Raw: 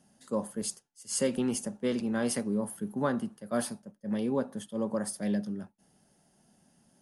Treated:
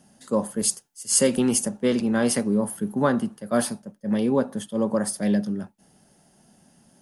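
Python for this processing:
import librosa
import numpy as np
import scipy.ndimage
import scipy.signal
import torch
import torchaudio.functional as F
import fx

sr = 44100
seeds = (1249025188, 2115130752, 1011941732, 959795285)

y = fx.high_shelf(x, sr, hz=7000.0, db=7.5, at=(0.59, 1.69))
y = y * 10.0 ** (8.0 / 20.0)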